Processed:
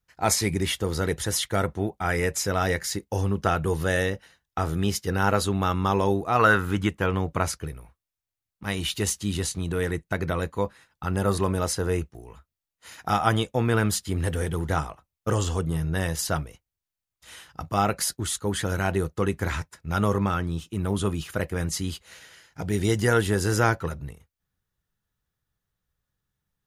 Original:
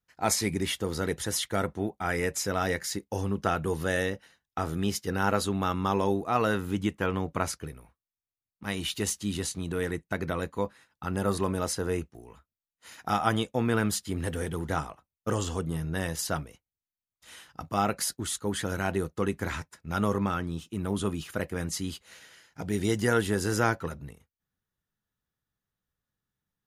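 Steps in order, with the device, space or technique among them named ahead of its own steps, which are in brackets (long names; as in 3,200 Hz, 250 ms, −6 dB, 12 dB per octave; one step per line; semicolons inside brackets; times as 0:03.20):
0:06.39–0:06.89: parametric band 1,400 Hz +10 dB 1.1 octaves
low shelf boost with a cut just above (low-shelf EQ 100 Hz +7.5 dB; parametric band 240 Hz −4.5 dB 0.58 octaves)
level +3.5 dB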